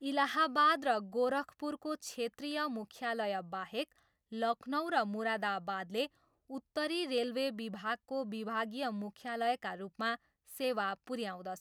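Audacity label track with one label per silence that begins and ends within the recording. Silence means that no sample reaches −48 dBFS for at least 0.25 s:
3.840000	4.320000	silence
6.070000	6.500000	silence
10.160000	10.500000	silence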